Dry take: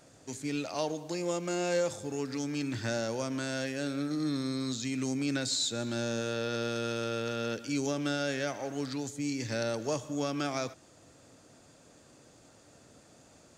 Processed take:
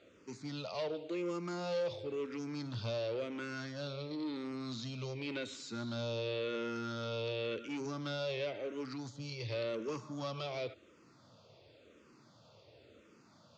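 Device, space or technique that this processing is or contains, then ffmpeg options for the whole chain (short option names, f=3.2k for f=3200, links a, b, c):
barber-pole phaser into a guitar amplifier: -filter_complex "[0:a]asplit=2[a][b];[b]afreqshift=-0.93[c];[a][c]amix=inputs=2:normalize=1,asoftclip=type=tanh:threshold=-32.5dB,highpass=97,equalizer=f=160:t=q:w=4:g=-5,equalizer=f=270:t=q:w=4:g=-8,equalizer=f=760:t=q:w=4:g=-9,equalizer=f=1.7k:t=q:w=4:g=-9,lowpass=f=4.4k:w=0.5412,lowpass=f=4.4k:w=1.3066,volume=3dB"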